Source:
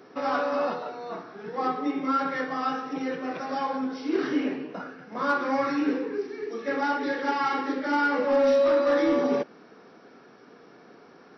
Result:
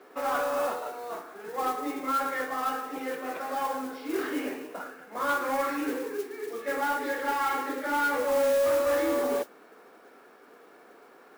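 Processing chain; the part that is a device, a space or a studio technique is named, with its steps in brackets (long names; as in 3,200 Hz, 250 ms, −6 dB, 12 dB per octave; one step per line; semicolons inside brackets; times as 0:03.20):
carbon microphone (band-pass filter 380–3,400 Hz; soft clipping −19 dBFS, distortion −18 dB; noise that follows the level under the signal 17 dB)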